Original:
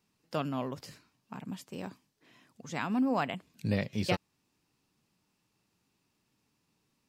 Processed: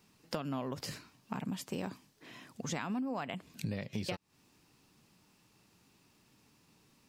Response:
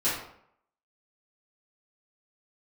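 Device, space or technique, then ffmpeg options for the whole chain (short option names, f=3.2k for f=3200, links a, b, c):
serial compression, peaks first: -af "acompressor=threshold=-37dB:ratio=6,acompressor=threshold=-46dB:ratio=2.5,volume=9.5dB"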